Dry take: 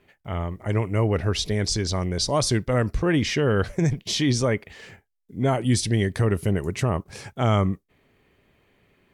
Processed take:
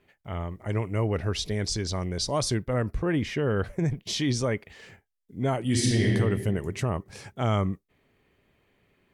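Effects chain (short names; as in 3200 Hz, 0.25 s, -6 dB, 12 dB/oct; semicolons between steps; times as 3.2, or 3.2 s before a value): 2.54–4.03 bell 5400 Hz -9 dB 1.6 oct; 5.63–6.13 reverb throw, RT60 1.5 s, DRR -3.5 dB; gain -4.5 dB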